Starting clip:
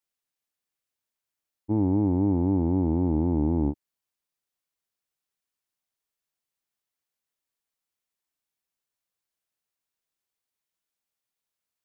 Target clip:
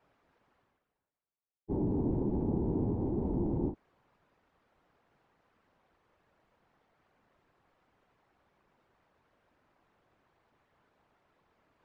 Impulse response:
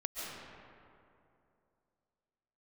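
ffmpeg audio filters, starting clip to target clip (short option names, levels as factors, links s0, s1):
-af "lowpass=1200,areverse,acompressor=mode=upward:threshold=0.0141:ratio=2.5,areverse,afftfilt=real='hypot(re,im)*cos(2*PI*random(0))':imag='hypot(re,im)*sin(2*PI*random(1))':win_size=512:overlap=0.75,volume=0.841"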